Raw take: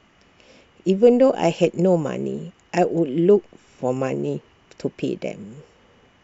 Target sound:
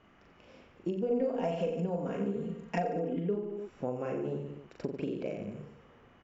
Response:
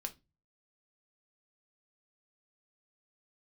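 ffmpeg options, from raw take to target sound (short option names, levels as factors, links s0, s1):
-filter_complex "[0:a]lowpass=f=1800:p=1,equalizer=f=1300:t=o:w=0.77:g=2.5,aecho=1:1:40|88|145.6|214.7|297.7:0.631|0.398|0.251|0.158|0.1,acompressor=threshold=0.0562:ratio=6,asettb=1/sr,asplit=3[s0][s1][s2];[s0]atrim=end=1.104[s3];[s1]atrim=start=1.1:end=3.36,asetpts=PTS-STARTPTS,afade=t=in:d=0.004:c=qsin,afade=t=out:st=2.256:d=0.004:c=qsin,aecho=1:1:4.3:0.83,atrim=end_sample=99666[s4];[s2]atrim=start=3.356[s5];[s3][s4]acrossfade=d=0.004:c1=hsin:c2=qsin[s6];[s6][s5]acrossfade=d=0.004:c1=qsin:c2=hsin,volume=0.501"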